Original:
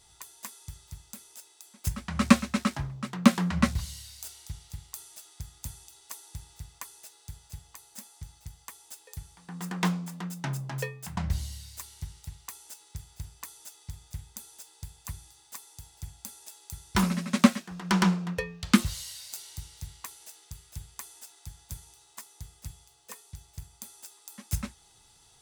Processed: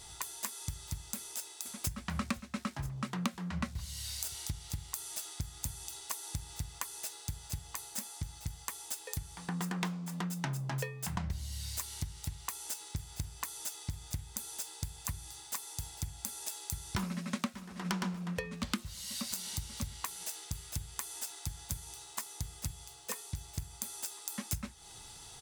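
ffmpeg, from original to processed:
-filter_complex "[0:a]asplit=2[s0][s1];[s1]afade=t=in:st=1.16:d=0.01,afade=t=out:st=1.91:d=0.01,aecho=0:1:490|980|1470|1960|2450|2940:0.562341|0.253054|0.113874|0.0512434|0.0230595|0.0103768[s2];[s0][s2]amix=inputs=2:normalize=0,asplit=2[s3][s4];[s4]afade=t=in:st=16.9:d=0.01,afade=t=out:st=17.87:d=0.01,aecho=0:1:590|1180|1770|2360:0.223872|0.100742|0.0453341|0.0204003[s5];[s3][s5]amix=inputs=2:normalize=0,acompressor=threshold=0.00708:ratio=8,volume=2.82"

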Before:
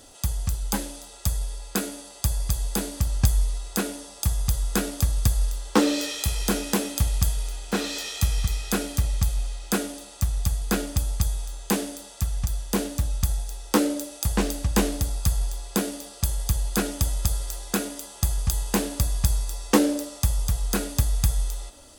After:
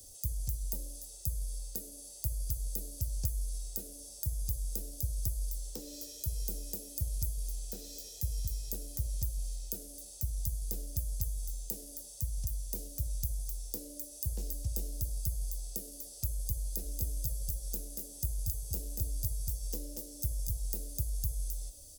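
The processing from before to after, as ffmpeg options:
-filter_complex "[0:a]asplit=3[s0][s1][s2];[s0]afade=t=out:st=16.82:d=0.02[s3];[s1]aecho=1:1:233:0.447,afade=t=in:st=16.82:d=0.02,afade=t=out:st=20.46:d=0.02[s4];[s2]afade=t=in:st=20.46:d=0.02[s5];[s3][s4][s5]amix=inputs=3:normalize=0,acrossover=split=81|340|680[s6][s7][s8][s9];[s6]acompressor=threshold=0.0224:ratio=4[s10];[s7]acompressor=threshold=0.0126:ratio=4[s11];[s8]acompressor=threshold=0.00891:ratio=4[s12];[s9]acompressor=threshold=0.00794:ratio=4[s13];[s10][s11][s12][s13]amix=inputs=4:normalize=0,firequalizer=gain_entry='entry(110,0);entry(200,-13);entry(540,-9);entry(1100,-29);entry(5300,1);entry(8400,1);entry(16000,15)':delay=0.05:min_phase=1,volume=0.75"

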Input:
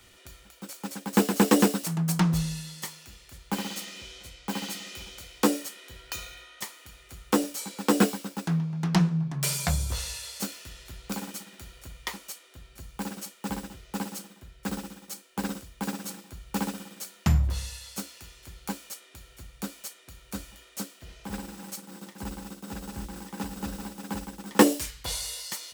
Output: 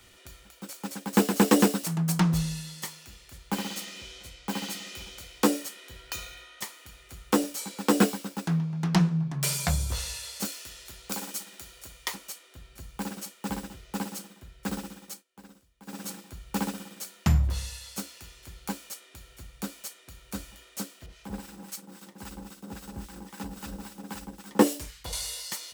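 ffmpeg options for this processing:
-filter_complex "[0:a]asettb=1/sr,asplit=3[s0][s1][s2];[s0]atrim=end=10.454[s3];[s1]atrim=start=10.45:end=12.15,asetpts=PTS-STARTPTS,afade=t=in:d=0.004:c=qsin,afade=t=out:st=1.696:d=0.004:c=qsin,bass=f=250:g=-8,treble=f=4000:g=5[s4];[s2]atrim=start=12.146[s5];[s3][s4]acrossfade=d=0.004:c1=hsin:c2=qsin[s6];[s6][s5]acrossfade=d=0.004:c1=qsin:c2=hsin,asettb=1/sr,asplit=3[s7][s8][s9];[s7]atrim=end=21.064[s10];[s8]atrim=start=21.06:end=25.13,asetpts=PTS-STARTPTS,afade=t=in:d=0.004:c=qsin,afade=t=out:st=4.066:d=0.004:c=qsin,acrossover=split=1000[s11][s12];[s11]aeval=exprs='val(0)*(1-0.7/2+0.7/2*cos(2*PI*3.7*n/s))':c=same[s13];[s12]aeval=exprs='val(0)*(1-0.7/2-0.7/2*cos(2*PI*3.7*n/s))':c=same[s14];[s13][s14]amix=inputs=2:normalize=0[s15];[s9]atrim=start=25.126[s16];[s10][s15]acrossfade=d=0.004:c1=hsin:c2=qsin[s17];[s17][s16]acrossfade=d=0.004:c1=qsin:c2=hsin,asplit=3[s18][s19][s20];[s18]atrim=end=15.24,asetpts=PTS-STARTPTS,afade=t=out:st=15.03:d=0.21:c=qsin:silence=0.105925[s21];[s19]atrim=start=15.24:end=15.86,asetpts=PTS-STARTPTS,volume=0.106[s22];[s20]atrim=start=15.86,asetpts=PTS-STARTPTS,afade=t=in:d=0.21:c=qsin:silence=0.105925[s23];[s21][s22][s23]concat=n=3:v=0:a=1"

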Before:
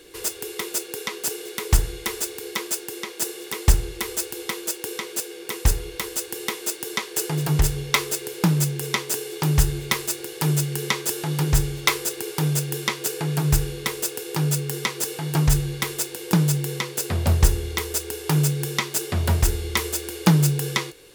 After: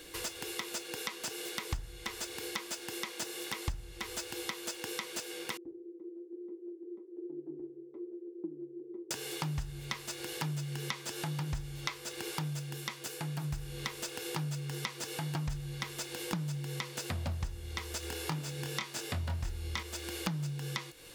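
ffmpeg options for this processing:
-filter_complex "[0:a]asettb=1/sr,asplit=3[s0][s1][s2];[s0]atrim=end=5.574[s3];[s1]atrim=start=5.57:end=9.11,asetpts=PTS-STARTPTS,afade=t=in:d=0.004:c=qsin,afade=t=out:st=3.536:d=0.004:c=qsin,asuperpass=centerf=350:order=4:qfactor=4.9[s4];[s2]atrim=start=9.106[s5];[s3][s4]acrossfade=d=0.004:c1=hsin:c2=qsin[s6];[s6][s5]acrossfade=d=0.004:c1=qsin:c2=hsin,asettb=1/sr,asplit=3[s7][s8][s9];[s7]atrim=end=18.004[s10];[s8]atrim=start=18:end=19.83,asetpts=PTS-STARTPTS,afade=t=in:d=0.004:c=qsin,afade=t=out:st=1.826:d=0.004:c=qsin,asplit=2[s11][s12];[s12]adelay=24,volume=0.668[s13];[s11][s13]amix=inputs=2:normalize=0,atrim=end_sample=80703[s14];[s9]atrim=start=19.826[s15];[s10][s14]acrossfade=d=0.004:c1=hsin:c2=qsin[s16];[s16][s15]acrossfade=d=0.004:c1=qsin:c2=hsin,asplit=3[s17][s18][s19];[s17]atrim=end=12.81,asetpts=PTS-STARTPTS,afade=t=out:st=12.34:d=0.47:silence=0.398107[s20];[s18]atrim=start=12.81:end=13.41,asetpts=PTS-STARTPTS,volume=0.398[s21];[s19]atrim=start=13.41,asetpts=PTS-STARTPTS,afade=t=in:d=0.47:silence=0.398107[s22];[s20][s21][s22]concat=n=3:v=0:a=1,acrossover=split=6200[s23][s24];[s24]acompressor=threshold=0.01:ratio=4:attack=1:release=60[s25];[s23][s25]amix=inputs=2:normalize=0,equalizer=f=410:w=4.9:g=-14,acompressor=threshold=0.0178:ratio=6"

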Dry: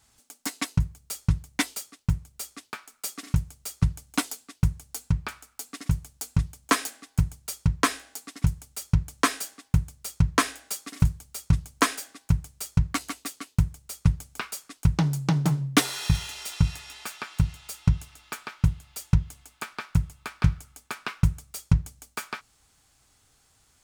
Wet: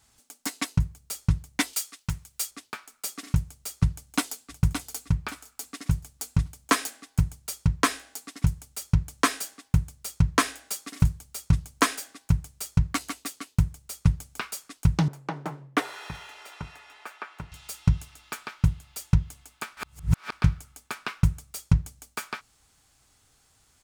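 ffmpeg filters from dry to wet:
-filter_complex "[0:a]asettb=1/sr,asplit=3[s0][s1][s2];[s0]atrim=end=1.734[s3];[s1]atrim=start=1.73:end=2.51,asetpts=PTS-STARTPTS,afade=t=in:d=0.004:c=qsin,afade=t=out:st=0.776:d=0.004:c=qsin,tiltshelf=f=780:g=-6.5[s4];[s2]atrim=start=2.506[s5];[s3][s4]acrossfade=d=0.004:c1=hsin:c2=qsin[s6];[s6][s5]acrossfade=d=0.004:c1=qsin:c2=hsin,asplit=2[s7][s8];[s8]afade=t=in:st=3.92:d=0.01,afade=t=out:st=4.58:d=0.01,aecho=0:1:570|1140|1710|2280:0.446684|0.134005|0.0402015|0.0120605[s9];[s7][s9]amix=inputs=2:normalize=0,asettb=1/sr,asplit=3[s10][s11][s12];[s10]atrim=end=15.084[s13];[s11]atrim=start=15.08:end=17.52,asetpts=PTS-STARTPTS,afade=t=in:d=0.004:c=qsin,afade=t=out:st=2.436:d=0.004:c=qsin,acrossover=split=310 2300:gain=0.1 1 0.158[s14][s15][s16];[s14][s15][s16]amix=inputs=3:normalize=0[s17];[s12]atrim=start=17.516[s18];[s13][s17]acrossfade=d=0.004:c1=hsin:c2=qsin[s19];[s19][s18]acrossfade=d=0.004:c1=qsin:c2=hsin,asplit=3[s20][s21][s22];[s20]atrim=end=19.772[s23];[s21]atrim=start=19.768:end=20.322,asetpts=PTS-STARTPTS,areverse[s24];[s22]atrim=start=20.318[s25];[s23][s24]acrossfade=d=0.004:c1=hsin:c2=hsin[s26];[s26][s25]acrossfade=d=0.004:c1=hsin:c2=hsin"

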